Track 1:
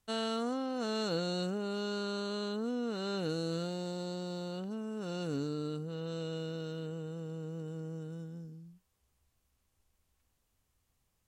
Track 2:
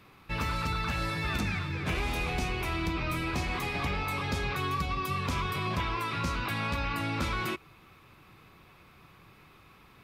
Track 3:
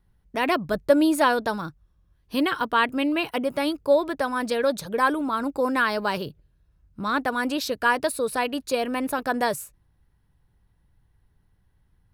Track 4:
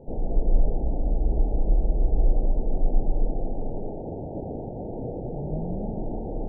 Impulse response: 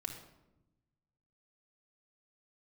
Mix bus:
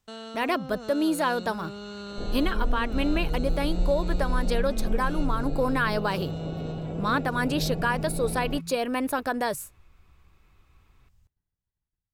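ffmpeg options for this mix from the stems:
-filter_complex "[0:a]asubboost=boost=9.5:cutoff=110,volume=3dB[a];[1:a]alimiter=level_in=7.5dB:limit=-24dB:level=0:latency=1,volume=-7.5dB,adelay=1050,volume=-10.5dB[b];[2:a]agate=range=-33dB:threshold=-48dB:ratio=3:detection=peak,dynaudnorm=f=110:g=7:m=8.5dB,volume=-8dB[c];[3:a]adelay=2100,volume=-3dB[d];[a][b]amix=inputs=2:normalize=0,equalizer=f=11k:w=1.9:g=-7.5,alimiter=level_in=6.5dB:limit=-24dB:level=0:latency=1,volume=-6.5dB,volume=0dB[e];[c][d]amix=inputs=2:normalize=0,alimiter=limit=-15dB:level=0:latency=1:release=186,volume=0dB[f];[e][f]amix=inputs=2:normalize=0"

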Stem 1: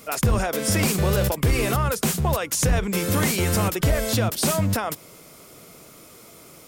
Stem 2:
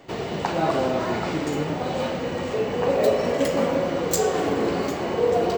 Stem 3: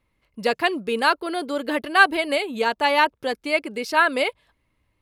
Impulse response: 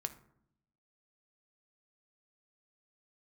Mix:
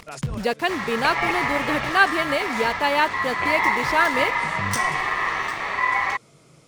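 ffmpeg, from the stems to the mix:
-filter_complex "[0:a]lowpass=f=9.6k:w=0.5412,lowpass=f=9.6k:w=1.3066,equalizer=f=140:t=o:w=0.41:g=13.5,alimiter=limit=-9.5dB:level=0:latency=1:release=174,volume=-7dB[a];[1:a]aeval=exprs='val(0)*sin(2*PI*1500*n/s)':c=same,adelay=600,volume=2dB[b];[2:a]lowshelf=f=140:g=9,acompressor=mode=upward:threshold=-25dB:ratio=2.5,acrusher=bits=5:mix=0:aa=0.000001,volume=-2dB,asplit=2[c][d];[d]apad=whole_len=294239[e];[a][e]sidechaincompress=threshold=-35dB:ratio=16:attack=6.2:release=424[f];[f][b][c]amix=inputs=3:normalize=0,highshelf=f=11k:g=-9"

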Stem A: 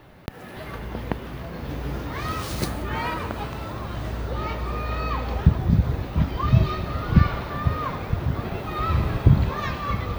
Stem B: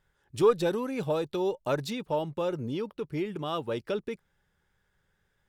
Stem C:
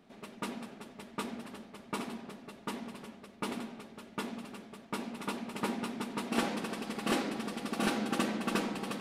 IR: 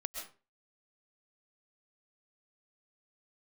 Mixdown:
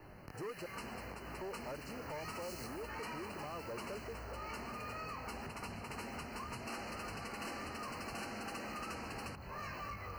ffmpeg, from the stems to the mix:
-filter_complex "[0:a]acompressor=threshold=-28dB:ratio=4,flanger=delay=19.5:depth=5.8:speed=0.71,asoftclip=type=tanh:threshold=-26.5dB,volume=-3dB[a];[1:a]highshelf=f=1.5k:t=q:w=1.5:g=-12,volume=-3.5dB,asplit=3[b][c][d];[b]atrim=end=0.66,asetpts=PTS-STARTPTS,afade=t=out:st=0.656:d=0.004:c=hsin[e];[c]atrim=start=0.66:end=1.41,asetpts=PTS-STARTPTS,volume=0[f];[d]atrim=start=1.41,asetpts=PTS-STARTPTS,afade=t=in:d=0.004:c=hsin[g];[e][f][g]concat=n=3:v=0:a=1[h];[2:a]highshelf=f=10k:g=-7.5,adelay=350,volume=-2dB,asplit=2[i][j];[j]volume=-8dB[k];[3:a]atrim=start_sample=2205[l];[k][l]afir=irnorm=-1:irlink=0[m];[a][h][i][m]amix=inputs=4:normalize=0,acrossover=split=490|1900[n][o][p];[n]acompressor=threshold=-49dB:ratio=4[q];[o]acompressor=threshold=-44dB:ratio=4[r];[p]acompressor=threshold=-45dB:ratio=4[s];[q][r][s]amix=inputs=3:normalize=0,asoftclip=type=hard:threshold=-39.5dB,asuperstop=centerf=3500:order=20:qfactor=3.4"

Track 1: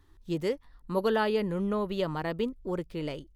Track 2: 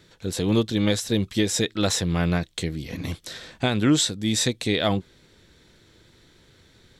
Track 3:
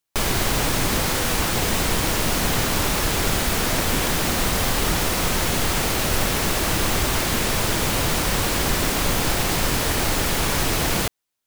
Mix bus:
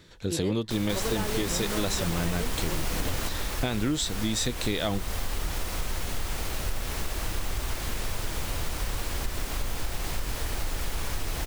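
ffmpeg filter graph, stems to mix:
-filter_complex "[0:a]volume=-1dB,asplit=2[a][b];[1:a]volume=0.5dB[c];[2:a]asubboost=boost=3.5:cutoff=82,adelay=550,volume=-4.5dB[d];[b]apad=whole_len=529852[e];[d][e]sidechaingate=range=-7dB:threshold=-48dB:ratio=16:detection=peak[f];[a][c][f]amix=inputs=3:normalize=0,acompressor=threshold=-24dB:ratio=6"

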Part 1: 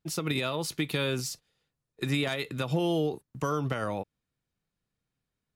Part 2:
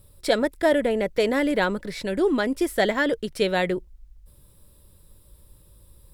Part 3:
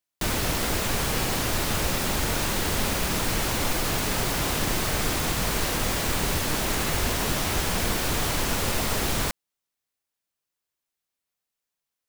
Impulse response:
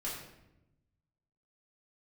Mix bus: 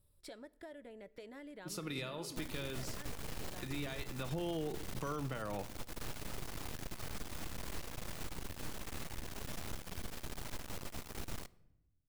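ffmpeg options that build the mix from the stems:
-filter_complex "[0:a]adelay=1600,volume=-1.5dB,asplit=2[a][b];[b]volume=-17.5dB[c];[1:a]bandreject=f=510:w=12,acompressor=threshold=-29dB:ratio=8,volume=-19.5dB,asplit=3[d][e][f];[e]volume=-20.5dB[g];[2:a]lowshelf=f=270:g=5.5,aeval=exprs='max(val(0),0)':c=same,adelay=2150,volume=-15.5dB,asplit=2[h][i];[i]volume=-20.5dB[j];[f]apad=whole_len=315582[k];[a][k]sidechaincompress=threshold=-56dB:ratio=8:attack=16:release=1200[l];[3:a]atrim=start_sample=2205[m];[c][g][j]amix=inputs=3:normalize=0[n];[n][m]afir=irnorm=-1:irlink=0[o];[l][d][h][o]amix=inputs=4:normalize=0,alimiter=level_in=5.5dB:limit=-24dB:level=0:latency=1:release=496,volume=-5.5dB"

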